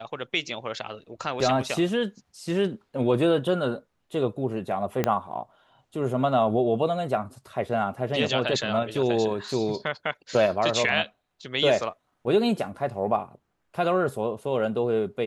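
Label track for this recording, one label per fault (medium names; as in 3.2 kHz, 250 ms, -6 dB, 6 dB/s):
5.040000	5.040000	pop -9 dBFS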